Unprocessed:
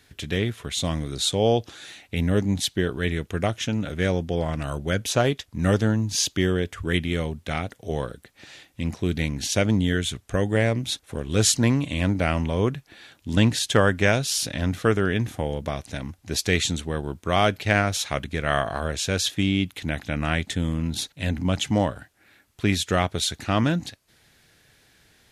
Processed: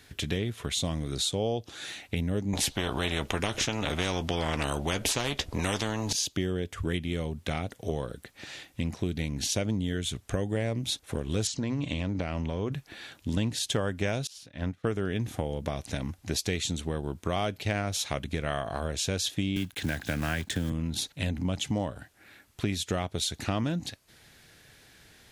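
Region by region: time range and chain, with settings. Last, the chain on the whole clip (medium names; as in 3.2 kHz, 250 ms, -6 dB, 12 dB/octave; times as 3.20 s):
2.53–6.13 s: tilt EQ -3 dB/octave + doubling 14 ms -13 dB + spectrum-flattening compressor 4:1
11.47–12.72 s: low-pass 7 kHz 24 dB/octave + hum notches 60/120 Hz + compression, threshold -22 dBFS
14.27–14.87 s: treble shelf 5.6 kHz -10.5 dB + upward expansion 2.5:1, over -36 dBFS
19.56–20.72 s: block-companded coder 5-bit + peaking EQ 1.6 kHz +13 dB 0.21 oct + three bands compressed up and down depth 40%
whole clip: dynamic bell 1.6 kHz, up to -5 dB, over -41 dBFS, Q 1.2; compression 4:1, threshold -30 dBFS; trim +2.5 dB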